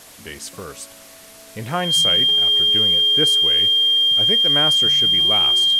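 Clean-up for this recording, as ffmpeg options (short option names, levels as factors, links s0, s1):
-af "adeclick=t=4,bandreject=f=3200:w=30,afwtdn=0.0079"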